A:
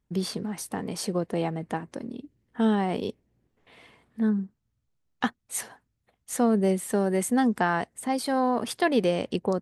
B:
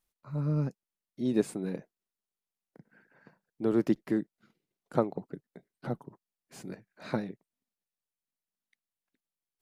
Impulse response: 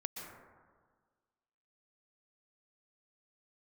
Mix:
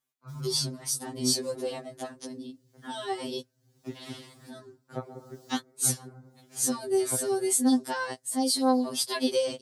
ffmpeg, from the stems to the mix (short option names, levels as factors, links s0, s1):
-filter_complex "[0:a]highshelf=f=3200:t=q:w=1.5:g=11.5,acompressor=mode=upward:threshold=0.0282:ratio=2.5,adelay=300,volume=0.75[s0];[1:a]acompressor=threshold=0.0224:ratio=2.5,volume=0.891,asplit=3[s1][s2][s3];[s1]atrim=end=3.11,asetpts=PTS-STARTPTS,afade=t=out:st=3.106:d=0.004:c=hsin[s4];[s2]atrim=start=3.11:end=3.84,asetpts=PTS-STARTPTS,volume=0[s5];[s3]atrim=start=3.84,asetpts=PTS-STARTPTS,afade=t=in:d=0.004:c=hsin[s6];[s4][s5][s6]concat=n=3:v=0:a=1,asplit=2[s7][s8];[s8]volume=0.473[s9];[2:a]atrim=start_sample=2205[s10];[s9][s10]afir=irnorm=-1:irlink=0[s11];[s0][s7][s11]amix=inputs=3:normalize=0,highpass=61,afftfilt=real='re*2.45*eq(mod(b,6),0)':imag='im*2.45*eq(mod(b,6),0)':win_size=2048:overlap=0.75"